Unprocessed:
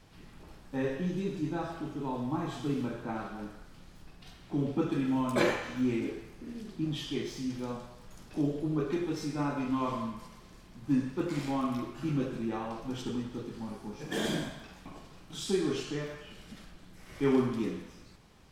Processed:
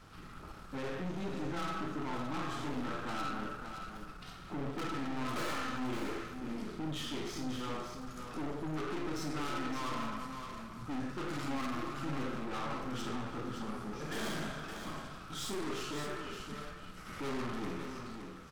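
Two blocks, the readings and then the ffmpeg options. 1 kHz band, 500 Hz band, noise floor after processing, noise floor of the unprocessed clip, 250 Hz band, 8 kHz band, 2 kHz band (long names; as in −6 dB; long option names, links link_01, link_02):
0.0 dB, −7.0 dB, −49 dBFS, −54 dBFS, −7.0 dB, −0.5 dB, −0.5 dB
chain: -filter_complex "[0:a]equalizer=frequency=1300:width=4.3:gain=15,aeval=exprs='(tanh(100*val(0)+0.5)-tanh(0.5))/100':channel_layout=same,asplit=2[link_01][link_02];[link_02]aecho=0:1:51|567:0.335|0.422[link_03];[link_01][link_03]amix=inputs=2:normalize=0,volume=3dB"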